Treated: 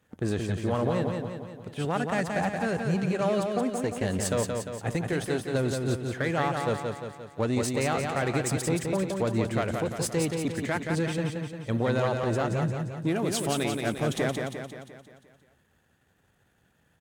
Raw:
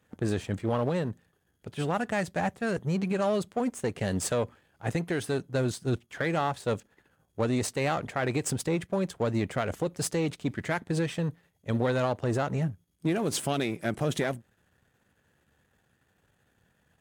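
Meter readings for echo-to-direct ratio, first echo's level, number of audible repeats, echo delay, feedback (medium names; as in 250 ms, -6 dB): -3.0 dB, -4.5 dB, 6, 175 ms, 54%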